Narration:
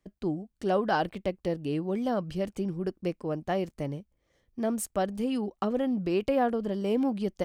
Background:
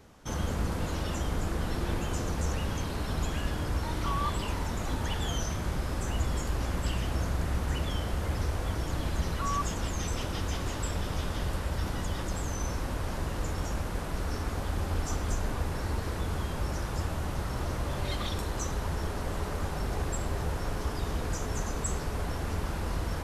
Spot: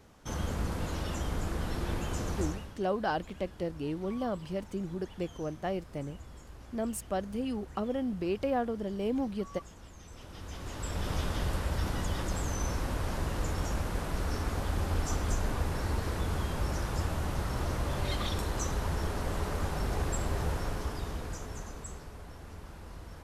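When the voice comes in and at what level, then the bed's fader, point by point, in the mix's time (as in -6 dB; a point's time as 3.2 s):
2.15 s, -4.5 dB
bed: 2.43 s -2.5 dB
2.78 s -18.5 dB
10.05 s -18.5 dB
11.1 s 0 dB
20.51 s 0 dB
22.21 s -14 dB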